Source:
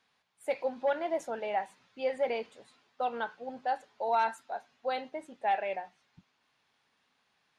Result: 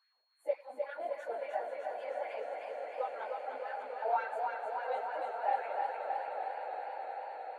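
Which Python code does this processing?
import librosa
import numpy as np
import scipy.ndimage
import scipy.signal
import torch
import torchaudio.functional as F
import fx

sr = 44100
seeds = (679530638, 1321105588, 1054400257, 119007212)

y = fx.phase_scramble(x, sr, seeds[0], window_ms=50)
y = fx.peak_eq(y, sr, hz=5200.0, db=-11.5, octaves=2.2)
y = y + 10.0 ** (-68.0 / 20.0) * np.sin(2.0 * np.pi * 4300.0 * np.arange(len(y)) / sr)
y = fx.filter_lfo_highpass(y, sr, shape='sine', hz=3.6, low_hz=480.0, high_hz=1900.0, q=2.8)
y = fx.dynamic_eq(y, sr, hz=290.0, q=0.7, threshold_db=-37.0, ratio=4.0, max_db=-4)
y = fx.echo_swell(y, sr, ms=99, loudest=8, wet_db=-15.0)
y = fx.echo_warbled(y, sr, ms=307, feedback_pct=74, rate_hz=2.8, cents=60, wet_db=-4.5)
y = y * 10.0 ** (-8.0 / 20.0)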